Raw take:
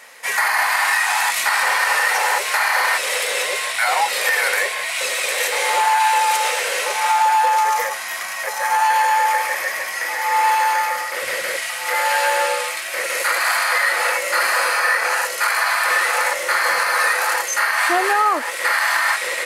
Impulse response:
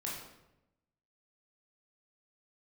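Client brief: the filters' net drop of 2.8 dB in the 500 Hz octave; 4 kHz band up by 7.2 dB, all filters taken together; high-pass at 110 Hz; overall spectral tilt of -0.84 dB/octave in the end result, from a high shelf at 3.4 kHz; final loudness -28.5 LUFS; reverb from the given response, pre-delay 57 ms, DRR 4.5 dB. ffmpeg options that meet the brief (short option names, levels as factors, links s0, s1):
-filter_complex "[0:a]highpass=110,equalizer=f=500:t=o:g=-3.5,highshelf=f=3400:g=5.5,equalizer=f=4000:t=o:g=5,asplit=2[s0][s1];[1:a]atrim=start_sample=2205,adelay=57[s2];[s1][s2]afir=irnorm=-1:irlink=0,volume=0.501[s3];[s0][s3]amix=inputs=2:normalize=0,volume=0.188"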